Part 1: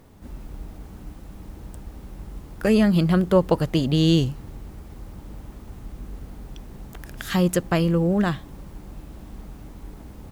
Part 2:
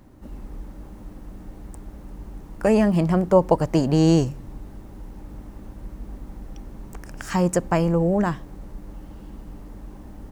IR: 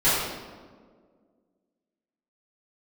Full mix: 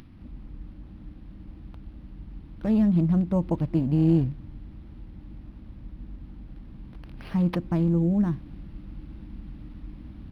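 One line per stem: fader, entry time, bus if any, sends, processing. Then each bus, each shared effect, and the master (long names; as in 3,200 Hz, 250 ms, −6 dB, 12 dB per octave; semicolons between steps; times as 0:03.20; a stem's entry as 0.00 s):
−2.5 dB, 0.00 s, no send, brick-wall band-stop 350–6,000 Hz; speech leveller 2 s
−14.5 dB, 0.00 s, no send, noise gate with hold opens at −38 dBFS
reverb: not used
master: upward compression, threshold −40 dBFS; linearly interpolated sample-rate reduction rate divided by 6×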